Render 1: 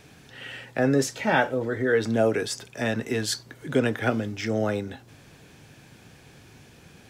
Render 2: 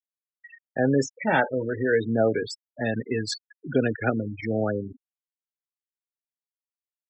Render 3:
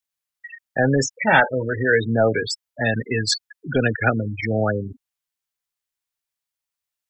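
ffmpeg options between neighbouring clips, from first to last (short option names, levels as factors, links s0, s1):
-af "afftfilt=real='re*gte(hypot(re,im),0.0708)':imag='im*gte(hypot(re,im),0.0708)':win_size=1024:overlap=0.75"
-af "apsyclip=3.98,equalizer=f=320:w=0.65:g=-9,volume=0.794"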